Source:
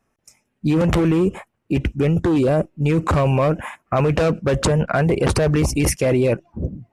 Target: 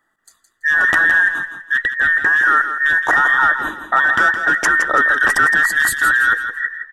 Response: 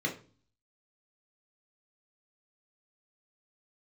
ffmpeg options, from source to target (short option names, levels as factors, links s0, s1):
-filter_complex "[0:a]afftfilt=real='real(if(between(b,1,1012),(2*floor((b-1)/92)+1)*92-b,b),0)':imag='imag(if(between(b,1,1012),(2*floor((b-1)/92)+1)*92-b,b),0)*if(between(b,1,1012),-1,1)':win_size=2048:overlap=0.75,equalizer=f=315:t=o:w=0.33:g=8,equalizer=f=1250:t=o:w=0.33:g=5,equalizer=f=4000:t=o:w=0.33:g=-10,asplit=2[s0][s1];[s1]aecho=0:1:166|332|498|664:0.355|0.114|0.0363|0.0116[s2];[s0][s2]amix=inputs=2:normalize=0,volume=1.19"